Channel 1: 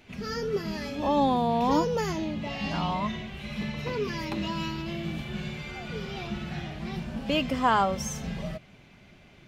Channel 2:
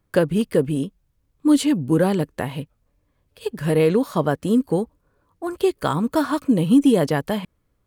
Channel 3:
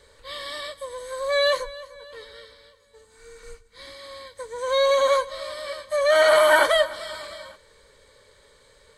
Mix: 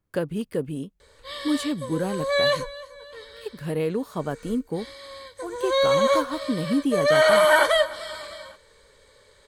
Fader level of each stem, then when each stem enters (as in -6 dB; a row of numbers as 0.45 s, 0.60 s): mute, -8.5 dB, -0.5 dB; mute, 0.00 s, 1.00 s